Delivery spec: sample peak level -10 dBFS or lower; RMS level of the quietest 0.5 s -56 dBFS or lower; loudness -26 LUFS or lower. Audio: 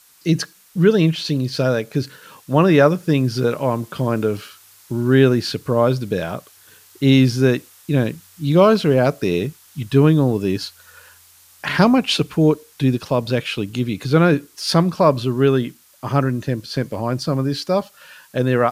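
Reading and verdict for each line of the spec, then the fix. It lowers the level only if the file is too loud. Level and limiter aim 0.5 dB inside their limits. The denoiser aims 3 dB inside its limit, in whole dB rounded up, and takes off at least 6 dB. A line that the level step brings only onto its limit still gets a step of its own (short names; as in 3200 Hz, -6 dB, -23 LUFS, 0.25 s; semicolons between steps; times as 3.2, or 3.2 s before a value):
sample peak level -2.0 dBFS: fail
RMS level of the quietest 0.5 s -50 dBFS: fail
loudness -18.5 LUFS: fail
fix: gain -8 dB; limiter -10.5 dBFS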